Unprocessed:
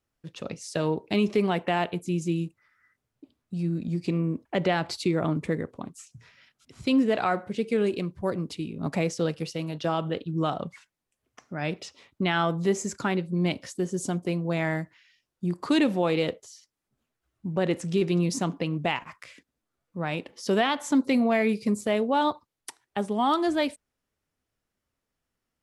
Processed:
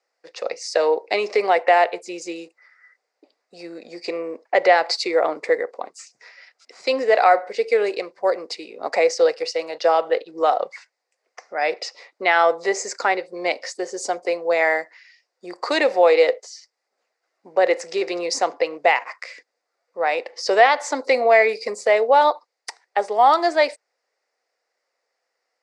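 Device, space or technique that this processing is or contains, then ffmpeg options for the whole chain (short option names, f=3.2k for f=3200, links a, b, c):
phone speaker on a table: -af "highpass=f=450:w=0.5412,highpass=f=450:w=1.3066,equalizer=f=500:t=q:w=4:g=8,equalizer=f=750:t=q:w=4:g=7,equalizer=f=2k:t=q:w=4:g=8,equalizer=f=3.2k:t=q:w=4:g=-9,equalizer=f=4.8k:t=q:w=4:g=9,lowpass=f=7.7k:w=0.5412,lowpass=f=7.7k:w=1.3066,volume=6.5dB"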